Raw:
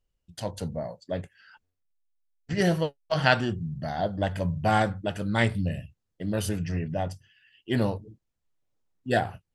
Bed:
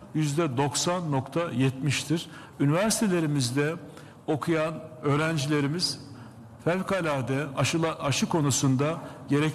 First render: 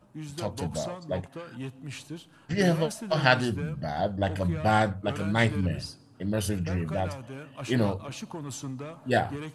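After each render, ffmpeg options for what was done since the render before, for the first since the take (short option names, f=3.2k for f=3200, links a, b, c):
-filter_complex "[1:a]volume=-13dB[a];[0:a][a]amix=inputs=2:normalize=0"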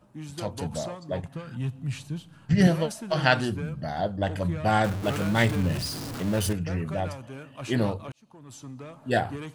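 -filter_complex "[0:a]asettb=1/sr,asplit=3[a][b][c];[a]atrim=end=1.234[d];[b]atrim=start=1.23:end=2.67,asetpts=PTS-STARTPTS,afade=t=in:d=0.004:c=qsin,afade=t=out:st=1.436:d=0.004:c=qsin,lowshelf=f=230:t=q:w=1.5:g=8[e];[c]atrim=start=2.666[f];[d][e]acrossfade=d=0.004:c1=hsin:c2=qsin[g];[g][f]acrossfade=d=0.004:c1=qsin:c2=hsin,asettb=1/sr,asplit=3[h][i][j];[h]atrim=end=4.844[k];[i]atrim=start=4.84:end=6.53,asetpts=PTS-STARTPTS,afade=t=in:d=0.004:c=qsin,afade=t=out:st=1.686:d=0.004:c=qsin,aeval=exprs='val(0)+0.5*0.0335*sgn(val(0))':c=same[l];[j]atrim=start=6.526[m];[k][l]acrossfade=d=0.004:c1=hsin:c2=qsin[n];[n][m]acrossfade=d=0.004:c1=qsin:c2=hsin,asplit=2[o][p];[o]atrim=end=8.12,asetpts=PTS-STARTPTS,afade=t=out:st=8.116:d=0.004:c=hsin[q];[p]atrim=start=8.12,asetpts=PTS-STARTPTS,afade=t=in:d=1.01[r];[q][r]concat=n=2:v=0:a=1"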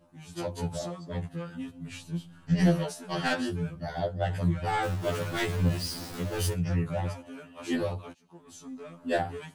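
-af "asoftclip=type=tanh:threshold=-15.5dB,afftfilt=real='re*2*eq(mod(b,4),0)':imag='im*2*eq(mod(b,4),0)':win_size=2048:overlap=0.75"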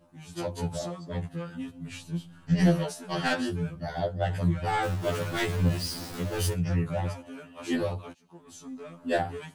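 -af "volume=1dB"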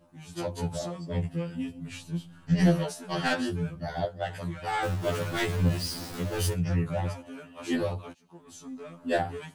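-filter_complex "[0:a]asettb=1/sr,asplit=3[a][b][c];[a]atrim=end=0.944[d];[b]atrim=start=0.94:end=1.8,asetpts=PTS-STARTPTS,afade=t=in:d=0.004:c=qsin,afade=t=out:st=0.856:d=0.004:c=qsin,asplit=2[e][f];[f]adelay=12,volume=-4dB[g];[e][g]amix=inputs=2:normalize=0,atrim=end_sample=37926[h];[c]atrim=start=1.796[i];[d][h]acrossfade=d=0.004:c1=hsin:c2=qsin[j];[j][i]acrossfade=d=0.004:c1=qsin:c2=hsin,asettb=1/sr,asplit=3[k][l][m];[k]atrim=end=4.054[n];[l]atrim=start=4.05:end=4.83,asetpts=PTS-STARTPTS,afade=t=in:d=0.004:c=qsin,afade=t=out:st=0.776:d=0.004:c=qsin,lowshelf=f=370:g=-11.5[o];[m]atrim=start=4.826[p];[n][o]acrossfade=d=0.004:c1=hsin:c2=qsin[q];[q][p]acrossfade=d=0.004:c1=qsin:c2=hsin"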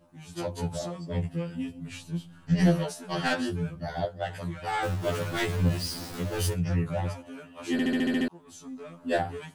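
-filter_complex "[0:a]asplit=9[a][b][c][d][e][f][g][h][i];[a]atrim=end=7.792[j];[b]atrim=start=7.718:end=7.792[k];[c]atrim=start=7.718:end=7.792[l];[d]atrim=start=7.718:end=7.792[m];[e]atrim=start=7.718:end=7.792[n];[f]atrim=start=7.718:end=7.792[o];[g]atrim=start=7.718:end=7.792[p];[h]atrim=start=7.718:end=7.792[q];[i]atrim=start=8.278[r];[j][k]acrossfade=d=0.004:c1=hsin:c2=hsin[s];[s][l]acrossfade=d=0.004:c1=hsin:c2=hsin[t];[t][m]acrossfade=d=0.004:c1=hsin:c2=hsin[u];[u][n]acrossfade=d=0.004:c1=hsin:c2=hsin[v];[v][o]acrossfade=d=0.004:c1=hsin:c2=hsin[w];[w][p]acrossfade=d=0.004:c1=hsin:c2=hsin[x];[x][q]acrossfade=d=0.004:c1=hsin:c2=hsin[y];[y][r]acrossfade=d=0.004:c1=hsin:c2=hsin"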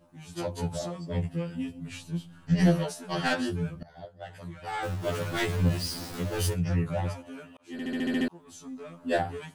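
-filter_complex "[0:a]asplit=3[a][b][c];[a]atrim=end=3.83,asetpts=PTS-STARTPTS,afade=t=out:st=3.826:d=0.004:c=hsin:silence=0.0794328[d];[b]atrim=start=3.83:end=7.57,asetpts=PTS-STARTPTS,afade=t=in:d=1.54:silence=0.0794328,afade=t=out:st=3.736:d=0.004:c=hsin[e];[c]atrim=start=7.57,asetpts=PTS-STARTPTS,afade=t=in:d=0.66[f];[d][e][f]concat=n=3:v=0:a=1"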